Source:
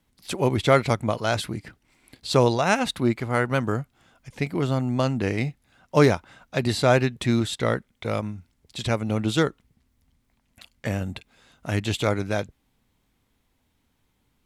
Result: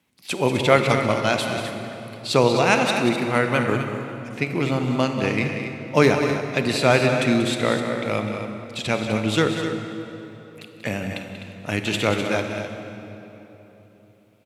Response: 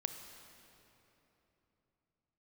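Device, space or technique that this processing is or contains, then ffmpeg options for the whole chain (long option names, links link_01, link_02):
stadium PA: -filter_complex "[0:a]highpass=140,equalizer=frequency=2500:width_type=o:width=0.46:gain=7,aecho=1:1:186.6|253.6:0.316|0.316[link_01];[1:a]atrim=start_sample=2205[link_02];[link_01][link_02]afir=irnorm=-1:irlink=0,volume=2.5dB"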